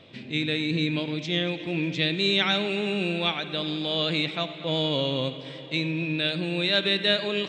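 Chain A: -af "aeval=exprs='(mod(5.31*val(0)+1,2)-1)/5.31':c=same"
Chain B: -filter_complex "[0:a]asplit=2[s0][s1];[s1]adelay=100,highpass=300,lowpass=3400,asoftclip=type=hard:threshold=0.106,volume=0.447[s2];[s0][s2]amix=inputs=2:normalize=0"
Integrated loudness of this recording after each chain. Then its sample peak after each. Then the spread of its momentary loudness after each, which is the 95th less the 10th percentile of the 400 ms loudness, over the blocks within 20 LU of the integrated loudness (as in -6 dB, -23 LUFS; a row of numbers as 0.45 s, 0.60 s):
-25.5 LUFS, -25.5 LUFS; -14.5 dBFS, -10.5 dBFS; 7 LU, 7 LU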